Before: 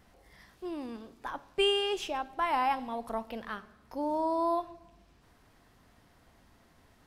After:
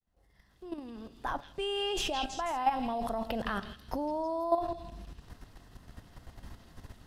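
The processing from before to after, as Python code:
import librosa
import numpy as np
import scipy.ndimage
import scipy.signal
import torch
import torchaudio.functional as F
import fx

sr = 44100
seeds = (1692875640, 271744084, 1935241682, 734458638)

p1 = fx.fade_in_head(x, sr, length_s=2.31)
p2 = fx.low_shelf(p1, sr, hz=160.0, db=10.5)
p3 = fx.notch(p2, sr, hz=2300.0, q=11.0)
p4 = fx.over_compress(p3, sr, threshold_db=-40.0, ratio=-1.0)
p5 = p3 + F.gain(torch.from_numpy(p4), 1.0).numpy()
p6 = fx.dynamic_eq(p5, sr, hz=710.0, q=4.2, threshold_db=-46.0, ratio=4.0, max_db=7)
p7 = fx.level_steps(p6, sr, step_db=11)
y = fx.echo_stepped(p7, sr, ms=163, hz=3500.0, octaves=0.7, feedback_pct=70, wet_db=-2.5)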